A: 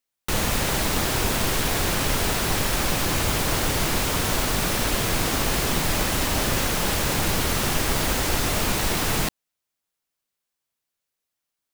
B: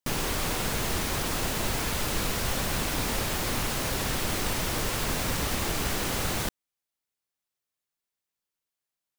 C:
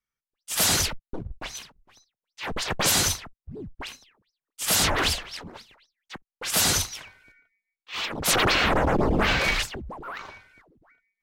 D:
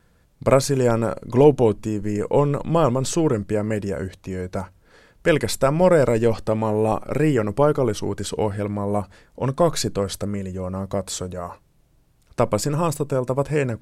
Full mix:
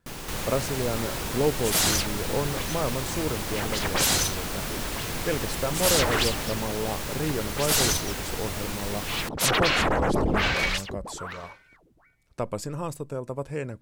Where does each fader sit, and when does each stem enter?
-9.5 dB, -8.5 dB, -1.5 dB, -10.5 dB; 0.00 s, 0.00 s, 1.15 s, 0.00 s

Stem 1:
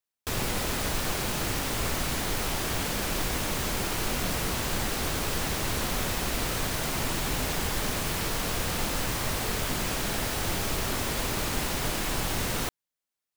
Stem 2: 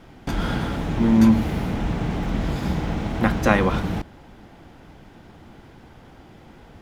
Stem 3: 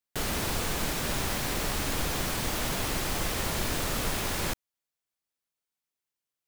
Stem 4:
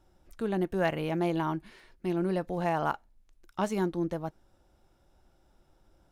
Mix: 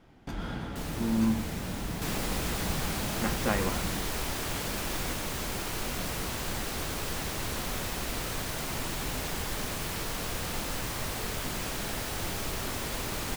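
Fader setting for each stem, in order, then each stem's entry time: -4.5 dB, -11.5 dB, -10.0 dB, mute; 1.75 s, 0.00 s, 0.60 s, mute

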